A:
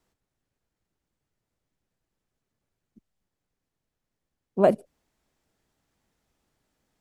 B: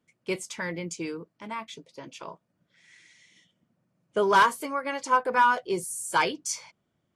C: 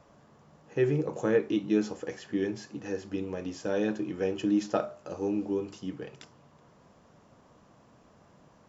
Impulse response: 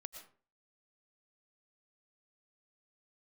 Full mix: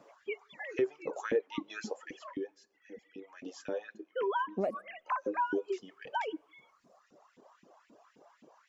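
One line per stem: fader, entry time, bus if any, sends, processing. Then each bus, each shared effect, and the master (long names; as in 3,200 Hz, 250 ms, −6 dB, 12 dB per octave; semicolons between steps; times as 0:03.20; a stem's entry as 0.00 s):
+1.0 dB, 0.00 s, bus A, send −20 dB, high-shelf EQ 3,800 Hz −10 dB
−3.5 dB, 0.00 s, bus A, send −11.5 dB, three sine waves on the formant tracks
−2.0 dB, 0.00 s, no bus, send −20 dB, auto-filter high-pass saw up 3.8 Hz 240–2,500 Hz; automatic ducking −24 dB, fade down 1.00 s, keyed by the first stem
bus A: 0.0 dB, high-pass filter 260 Hz 6 dB per octave; downward compressor 3 to 1, threshold −26 dBFS, peak gain reduction 9.5 dB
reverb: on, RT60 0.40 s, pre-delay 75 ms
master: reverb reduction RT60 1.5 s; downward compressor 2 to 1, threshold −33 dBFS, peak gain reduction 10 dB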